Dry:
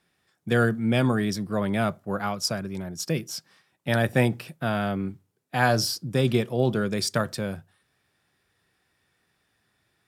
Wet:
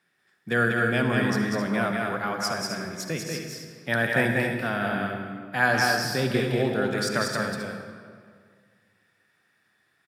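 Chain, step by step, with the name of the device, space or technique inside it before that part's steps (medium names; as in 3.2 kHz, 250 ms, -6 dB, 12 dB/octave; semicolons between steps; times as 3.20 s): stadium PA (high-pass 130 Hz 12 dB/octave; peaking EQ 1.7 kHz +8 dB 0.76 oct; loudspeakers at several distances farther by 66 m -3 dB, 90 m -9 dB; reverberation RT60 2.0 s, pre-delay 49 ms, DRR 5.5 dB); trim -4 dB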